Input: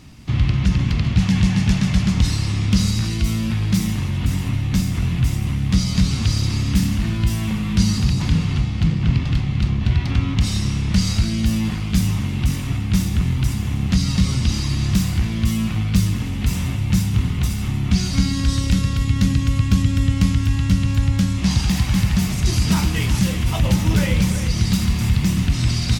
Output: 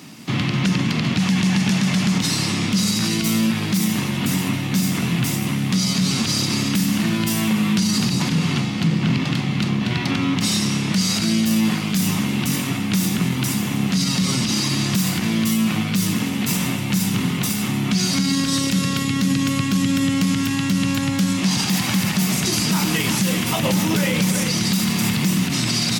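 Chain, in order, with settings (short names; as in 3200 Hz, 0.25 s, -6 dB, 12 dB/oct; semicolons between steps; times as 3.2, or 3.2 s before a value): HPF 170 Hz 24 dB/oct; high shelf 11000 Hz +8.5 dB; limiter -17.5 dBFS, peak gain reduction 9.5 dB; gain +7 dB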